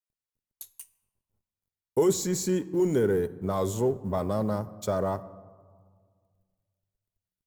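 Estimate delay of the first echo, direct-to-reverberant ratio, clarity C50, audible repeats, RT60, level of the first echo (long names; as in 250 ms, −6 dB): no echo audible, 11.0 dB, 17.5 dB, no echo audible, 1.8 s, no echo audible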